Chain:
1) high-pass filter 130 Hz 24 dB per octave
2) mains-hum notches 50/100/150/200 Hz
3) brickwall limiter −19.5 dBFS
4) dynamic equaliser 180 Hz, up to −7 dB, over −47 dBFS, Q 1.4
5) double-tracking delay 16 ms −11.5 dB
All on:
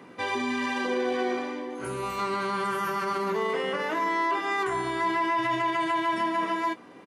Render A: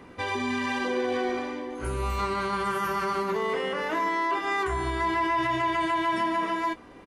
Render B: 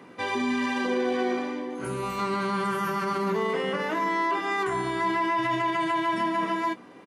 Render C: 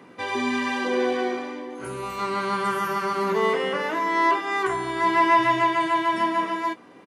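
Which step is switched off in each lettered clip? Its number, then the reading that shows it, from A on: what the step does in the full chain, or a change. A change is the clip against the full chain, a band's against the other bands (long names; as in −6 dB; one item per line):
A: 1, 125 Hz band +6.0 dB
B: 4, 125 Hz band +5.0 dB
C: 3, average gain reduction 2.5 dB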